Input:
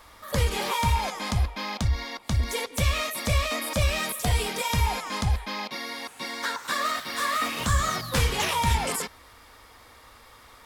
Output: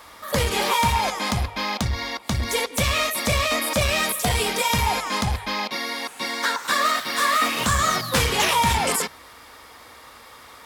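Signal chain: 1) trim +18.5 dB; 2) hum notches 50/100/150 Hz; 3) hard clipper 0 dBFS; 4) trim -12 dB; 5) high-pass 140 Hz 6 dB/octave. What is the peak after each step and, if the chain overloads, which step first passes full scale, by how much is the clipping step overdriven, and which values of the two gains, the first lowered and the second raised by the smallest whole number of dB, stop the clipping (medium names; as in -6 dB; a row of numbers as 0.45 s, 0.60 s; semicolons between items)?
+6.0 dBFS, +6.0 dBFS, 0.0 dBFS, -12.0 dBFS, -8.5 dBFS; step 1, 6.0 dB; step 1 +12.5 dB, step 4 -6 dB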